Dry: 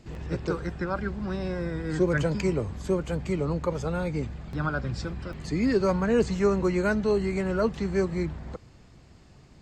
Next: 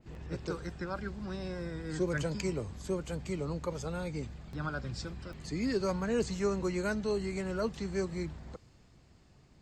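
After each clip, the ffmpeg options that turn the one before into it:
-af "adynamicequalizer=threshold=0.00355:dfrequency=3200:dqfactor=0.7:tfrequency=3200:tqfactor=0.7:attack=5:release=100:ratio=0.375:range=4:mode=boostabove:tftype=highshelf,volume=-8dB"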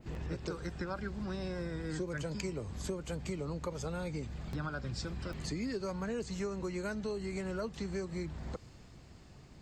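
-af "acompressor=threshold=-41dB:ratio=6,volume=6dB"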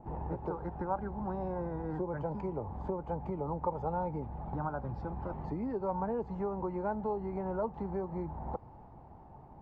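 -af "lowpass=f=860:t=q:w=8.3"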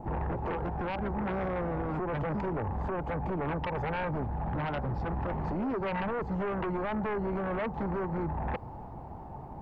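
-af "alimiter=level_in=4.5dB:limit=-24dB:level=0:latency=1:release=33,volume=-4.5dB,aeval=exprs='0.0376*sin(PI/2*2*val(0)/0.0376)':c=same"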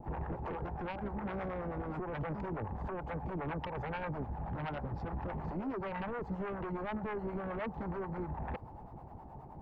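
-filter_complex "[0:a]acrossover=split=540[a][b];[a]aeval=exprs='val(0)*(1-0.7/2+0.7/2*cos(2*PI*9.5*n/s))':c=same[c];[b]aeval=exprs='val(0)*(1-0.7/2-0.7/2*cos(2*PI*9.5*n/s))':c=same[d];[c][d]amix=inputs=2:normalize=0,volume=-3dB"

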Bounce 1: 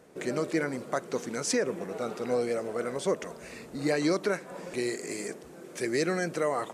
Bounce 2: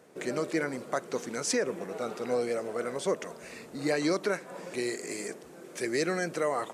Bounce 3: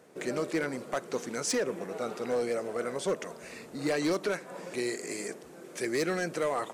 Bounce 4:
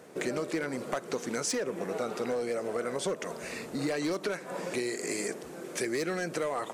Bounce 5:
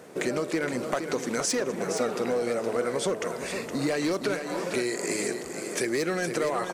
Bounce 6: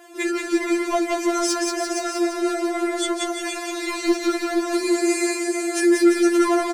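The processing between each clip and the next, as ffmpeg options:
-af "highpass=71,lowshelf=f=270:g=-4"
-af "asoftclip=type=hard:threshold=-23.5dB"
-af "acompressor=threshold=-35dB:ratio=6,volume=6dB"
-af "aecho=1:1:467:0.398,volume=4dB"
-af "aecho=1:1:180|342|487.8|619|737.1:0.631|0.398|0.251|0.158|0.1,afftfilt=real='re*4*eq(mod(b,16),0)':imag='im*4*eq(mod(b,16),0)':win_size=2048:overlap=0.75,volume=6.5dB"

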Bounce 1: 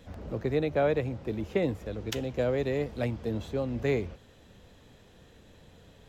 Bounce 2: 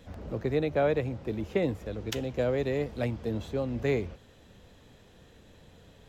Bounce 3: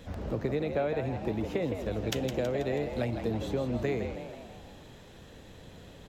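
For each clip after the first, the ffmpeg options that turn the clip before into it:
-af anull
-filter_complex "[0:a]acompressor=threshold=-32dB:ratio=6,asplit=2[a][b];[b]asplit=6[c][d][e][f][g][h];[c]adelay=162,afreqshift=82,volume=-8dB[i];[d]adelay=324,afreqshift=164,volume=-13.8dB[j];[e]adelay=486,afreqshift=246,volume=-19.7dB[k];[f]adelay=648,afreqshift=328,volume=-25.5dB[l];[g]adelay=810,afreqshift=410,volume=-31.4dB[m];[h]adelay=972,afreqshift=492,volume=-37.2dB[n];[i][j][k][l][m][n]amix=inputs=6:normalize=0[o];[a][o]amix=inputs=2:normalize=0,volume=4.5dB"

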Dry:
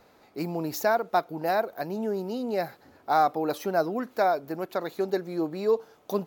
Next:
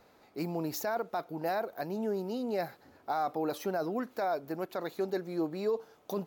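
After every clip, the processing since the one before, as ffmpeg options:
-af "alimiter=limit=-19.5dB:level=0:latency=1:release=10,volume=-3.5dB"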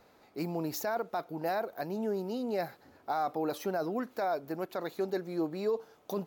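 -af anull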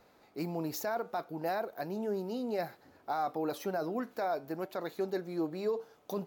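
-af "flanger=delay=5.5:depth=2.2:regen=-86:speed=0.61:shape=sinusoidal,volume=3dB"

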